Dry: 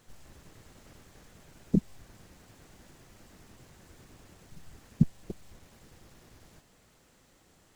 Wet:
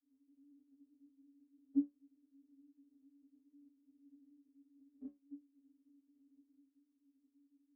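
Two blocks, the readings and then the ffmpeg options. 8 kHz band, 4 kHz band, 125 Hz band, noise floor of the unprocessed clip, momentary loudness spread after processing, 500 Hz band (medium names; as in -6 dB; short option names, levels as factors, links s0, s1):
under -25 dB, under -25 dB, under -40 dB, -63 dBFS, 19 LU, -21.5 dB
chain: -af "asuperpass=centerf=250:order=20:qfactor=3.5,afftfilt=real='re*eq(mod(floor(b*sr/1024/260),2),1)':imag='im*eq(mod(floor(b*sr/1024/260),2),1)':win_size=1024:overlap=0.75,volume=4.47"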